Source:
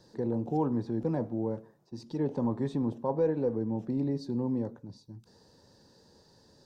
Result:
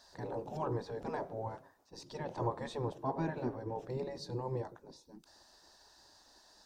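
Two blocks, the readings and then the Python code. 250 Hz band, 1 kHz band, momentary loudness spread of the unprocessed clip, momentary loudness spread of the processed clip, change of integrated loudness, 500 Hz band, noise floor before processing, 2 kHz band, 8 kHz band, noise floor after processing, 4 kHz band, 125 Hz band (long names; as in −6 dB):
−12.5 dB, 0.0 dB, 18 LU, 18 LU, −8.0 dB, −7.0 dB, −63 dBFS, +4.0 dB, can't be measured, −65 dBFS, +2.5 dB, −6.5 dB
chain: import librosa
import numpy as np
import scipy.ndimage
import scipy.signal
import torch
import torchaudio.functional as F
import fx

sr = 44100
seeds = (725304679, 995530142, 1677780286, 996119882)

y = fx.dynamic_eq(x, sr, hz=120.0, q=1.5, threshold_db=-43.0, ratio=4.0, max_db=-3)
y = fx.spec_gate(y, sr, threshold_db=-10, keep='weak')
y = y * 10.0 ** (4.0 / 20.0)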